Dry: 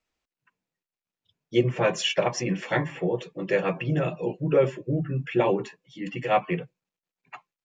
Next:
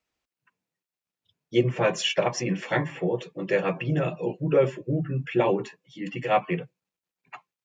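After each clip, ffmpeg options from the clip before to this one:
-af "highpass=44"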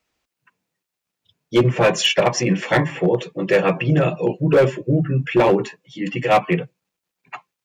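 -af "asoftclip=type=hard:threshold=-17.5dB,volume=8.5dB"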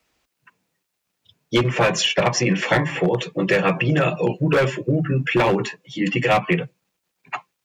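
-filter_complex "[0:a]acrossover=split=200|920|7800[a][b][c][d];[a]acompressor=threshold=-29dB:ratio=4[e];[b]acompressor=threshold=-27dB:ratio=4[f];[c]acompressor=threshold=-25dB:ratio=4[g];[d]acompressor=threshold=-56dB:ratio=4[h];[e][f][g][h]amix=inputs=4:normalize=0,volume=5.5dB"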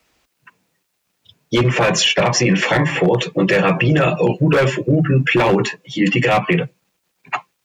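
-af "alimiter=limit=-13dB:level=0:latency=1:release=14,volume=6.5dB"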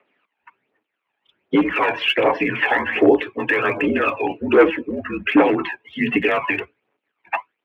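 -af "highpass=f=350:t=q:w=0.5412,highpass=f=350:t=q:w=1.307,lowpass=f=2.9k:t=q:w=0.5176,lowpass=f=2.9k:t=q:w=0.7071,lowpass=f=2.9k:t=q:w=1.932,afreqshift=-64,aphaser=in_gain=1:out_gain=1:delay=1.3:decay=0.62:speed=1.3:type=triangular,volume=-2.5dB"

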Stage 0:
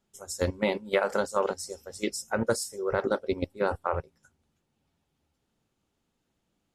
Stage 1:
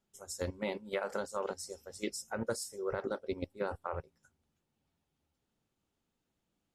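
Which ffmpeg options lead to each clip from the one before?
-af "alimiter=limit=-17dB:level=0:latency=1:release=176,volume=-6dB"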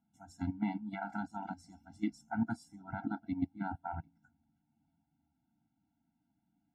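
-af "bandpass=f=320:t=q:w=0.71:csg=0,afftfilt=real='re*eq(mod(floor(b*sr/1024/330),2),0)':imag='im*eq(mod(floor(b*sr/1024/330),2),0)':win_size=1024:overlap=0.75,volume=9dB"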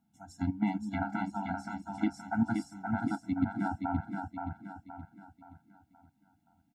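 -af "aecho=1:1:523|1046|1569|2092|2615:0.596|0.244|0.1|0.0411|0.0168,volume=4.5dB"

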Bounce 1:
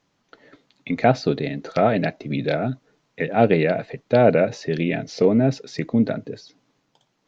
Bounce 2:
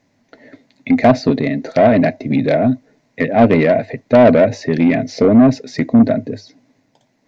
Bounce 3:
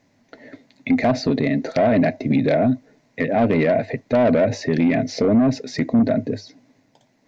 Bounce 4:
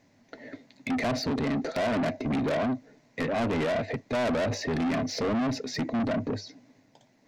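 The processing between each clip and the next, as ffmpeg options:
-af "equalizer=f=100:t=o:w=0.33:g=10,equalizer=f=250:t=o:w=0.33:g=12,equalizer=f=630:t=o:w=0.33:g=8,equalizer=f=1.25k:t=o:w=0.33:g=-9,equalizer=f=2k:t=o:w=0.33:g=7,equalizer=f=3.15k:t=o:w=0.33:g=-7,acontrast=71,volume=-2dB"
-af "alimiter=limit=-10.5dB:level=0:latency=1:release=85"
-af "asoftclip=type=tanh:threshold=-23.5dB,volume=-1.5dB"

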